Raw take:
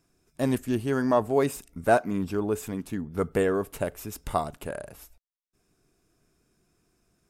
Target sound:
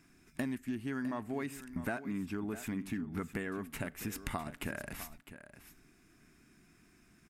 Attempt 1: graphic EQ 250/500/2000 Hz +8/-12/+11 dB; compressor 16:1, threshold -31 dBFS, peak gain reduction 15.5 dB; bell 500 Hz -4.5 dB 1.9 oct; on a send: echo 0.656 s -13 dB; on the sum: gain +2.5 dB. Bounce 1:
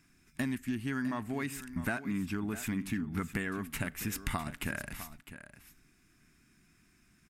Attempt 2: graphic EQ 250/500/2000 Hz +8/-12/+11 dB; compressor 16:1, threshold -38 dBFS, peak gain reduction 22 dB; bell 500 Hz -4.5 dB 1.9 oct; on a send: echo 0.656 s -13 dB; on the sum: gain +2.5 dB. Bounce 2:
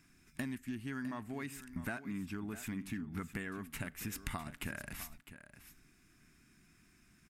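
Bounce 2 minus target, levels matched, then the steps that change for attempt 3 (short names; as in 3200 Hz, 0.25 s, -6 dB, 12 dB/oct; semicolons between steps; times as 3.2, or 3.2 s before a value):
500 Hz band -4.0 dB
change: bell 500 Hz +3.5 dB 1.9 oct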